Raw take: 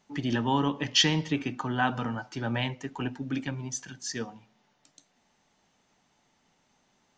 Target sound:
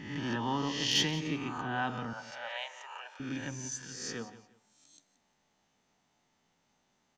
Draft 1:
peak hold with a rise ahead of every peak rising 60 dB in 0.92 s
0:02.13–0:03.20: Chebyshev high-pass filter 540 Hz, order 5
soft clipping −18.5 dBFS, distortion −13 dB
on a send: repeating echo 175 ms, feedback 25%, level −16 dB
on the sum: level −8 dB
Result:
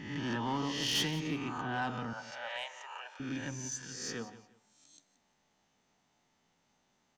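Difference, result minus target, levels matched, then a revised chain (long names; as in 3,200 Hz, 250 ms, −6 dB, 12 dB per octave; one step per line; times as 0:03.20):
soft clipping: distortion +12 dB
peak hold with a rise ahead of every peak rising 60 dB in 0.92 s
0:02.13–0:03.20: Chebyshev high-pass filter 540 Hz, order 5
soft clipping −8.5 dBFS, distortion −25 dB
on a send: repeating echo 175 ms, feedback 25%, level −16 dB
on the sum: level −8 dB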